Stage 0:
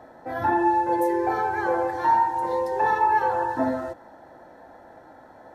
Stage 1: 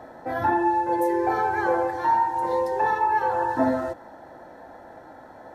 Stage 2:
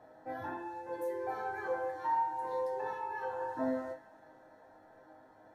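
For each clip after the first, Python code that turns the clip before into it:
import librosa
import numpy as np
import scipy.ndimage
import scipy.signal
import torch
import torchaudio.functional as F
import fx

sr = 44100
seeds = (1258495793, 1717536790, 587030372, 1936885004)

y1 = fx.rider(x, sr, range_db=5, speed_s=0.5)
y2 = fx.resonator_bank(y1, sr, root=44, chord='major', decay_s=0.29)
y2 = fx.echo_wet_highpass(y2, sr, ms=270, feedback_pct=69, hz=1700.0, wet_db=-17.5)
y2 = F.gain(torch.from_numpy(y2), -1.5).numpy()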